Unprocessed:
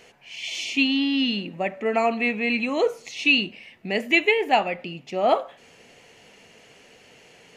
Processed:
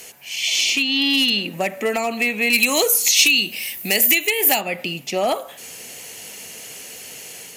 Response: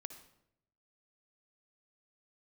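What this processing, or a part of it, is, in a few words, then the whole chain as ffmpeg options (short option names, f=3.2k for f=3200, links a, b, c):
FM broadcast chain: -filter_complex "[0:a]highpass=46,dynaudnorm=f=390:g=3:m=3dB,acrossover=split=370|5700[a][b][c];[a]acompressor=threshold=-33dB:ratio=4[d];[b]acompressor=threshold=-24dB:ratio=4[e];[c]acompressor=threshold=-56dB:ratio=4[f];[d][e][f]amix=inputs=3:normalize=0,aemphasis=mode=production:type=50fm,alimiter=limit=-15dB:level=0:latency=1:release=299,asoftclip=type=hard:threshold=-18dB,lowpass=f=15k:w=0.5412,lowpass=f=15k:w=1.3066,aemphasis=mode=production:type=50fm,asplit=3[g][h][i];[g]afade=t=out:st=2.52:d=0.02[j];[h]aemphasis=mode=production:type=75kf,afade=t=in:st=2.52:d=0.02,afade=t=out:st=4.6:d=0.02[k];[i]afade=t=in:st=4.6:d=0.02[l];[j][k][l]amix=inputs=3:normalize=0,volume=5dB"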